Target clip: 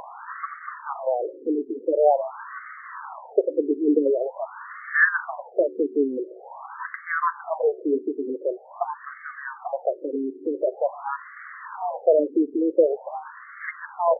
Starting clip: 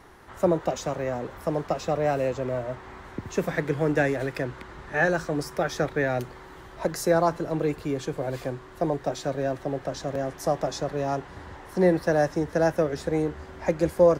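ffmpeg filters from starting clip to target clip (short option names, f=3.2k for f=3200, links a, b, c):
-af "acompressor=mode=upward:threshold=-33dB:ratio=2.5,aeval=exprs='val(0)+0.00158*sin(2*PI*12000*n/s)':c=same,afftfilt=real='re*between(b*sr/1024,320*pow(1600/320,0.5+0.5*sin(2*PI*0.46*pts/sr))/1.41,320*pow(1600/320,0.5+0.5*sin(2*PI*0.46*pts/sr))*1.41)':imag='im*between(b*sr/1024,320*pow(1600/320,0.5+0.5*sin(2*PI*0.46*pts/sr))/1.41,320*pow(1600/320,0.5+0.5*sin(2*PI*0.46*pts/sr))*1.41)':win_size=1024:overlap=0.75,volume=8dB"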